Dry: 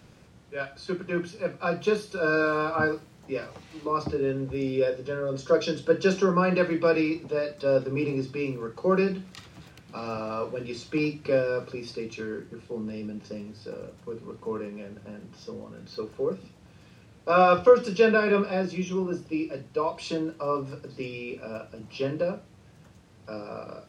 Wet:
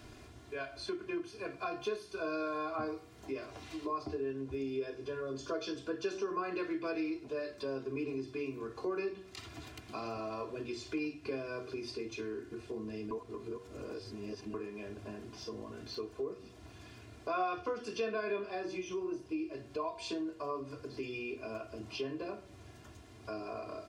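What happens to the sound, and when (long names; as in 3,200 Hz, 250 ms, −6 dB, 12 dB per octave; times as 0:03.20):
0:13.11–0:14.54: reverse
whole clip: comb filter 2.9 ms, depth 84%; hum removal 94.91 Hz, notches 30; downward compressor 2.5 to 1, threshold −41 dBFS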